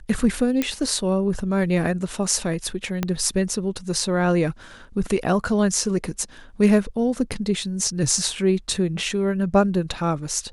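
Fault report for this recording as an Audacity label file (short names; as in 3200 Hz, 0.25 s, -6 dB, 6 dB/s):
0.620000	0.620000	pop -8 dBFS
3.030000	3.030000	pop -9 dBFS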